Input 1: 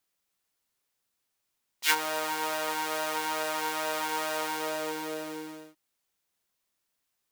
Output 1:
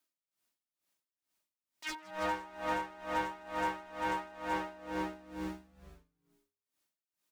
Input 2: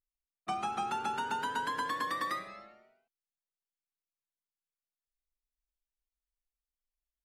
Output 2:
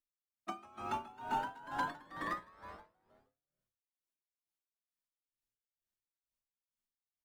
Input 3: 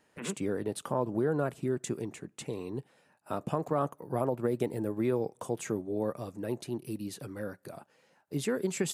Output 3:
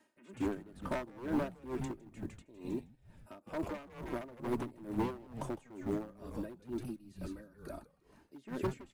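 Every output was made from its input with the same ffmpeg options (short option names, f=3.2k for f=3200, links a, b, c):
-filter_complex "[0:a]lowshelf=f=120:t=q:w=1.5:g=-11,acrossover=split=9200[a][b];[b]acompressor=threshold=-57dB:ratio=4:attack=1:release=60[c];[a][c]amix=inputs=2:normalize=0,equalizer=f=95:t=o:w=1.2:g=5,aecho=1:1:3.2:0.79,acrossover=split=440|2500[d][e][f];[f]acompressor=threshold=-51dB:ratio=6[g];[d][e][g]amix=inputs=3:normalize=0,aeval=exprs='0.0708*(abs(mod(val(0)/0.0708+3,4)-2)-1)':c=same,acrusher=bits=9:mode=log:mix=0:aa=0.000001,asplit=7[h][i][j][k][l][m][n];[i]adelay=158,afreqshift=-120,volume=-6dB[o];[j]adelay=316,afreqshift=-240,volume=-12.7dB[p];[k]adelay=474,afreqshift=-360,volume=-19.5dB[q];[l]adelay=632,afreqshift=-480,volume=-26.2dB[r];[m]adelay=790,afreqshift=-600,volume=-33dB[s];[n]adelay=948,afreqshift=-720,volume=-39.7dB[t];[h][o][p][q][r][s][t]amix=inputs=7:normalize=0,aeval=exprs='val(0)*pow(10,-21*(0.5-0.5*cos(2*PI*2.2*n/s))/20)':c=same,volume=-3.5dB"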